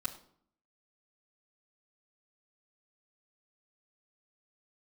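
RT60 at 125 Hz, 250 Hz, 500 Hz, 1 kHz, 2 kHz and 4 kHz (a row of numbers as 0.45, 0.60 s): 0.70, 0.80, 0.60, 0.60, 0.45, 0.45 s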